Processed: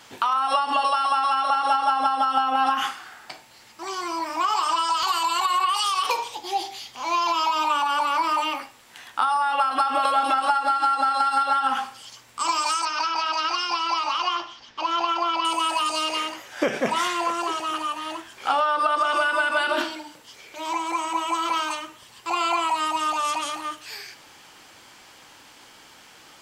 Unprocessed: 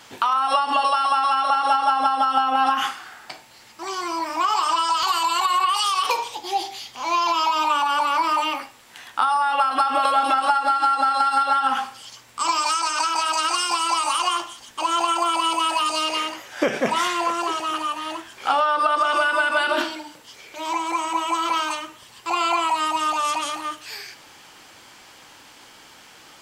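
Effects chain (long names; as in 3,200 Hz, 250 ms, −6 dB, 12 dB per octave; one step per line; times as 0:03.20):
0:12.85–0:15.45: elliptic low-pass filter 5,400 Hz, stop band 80 dB
level −2 dB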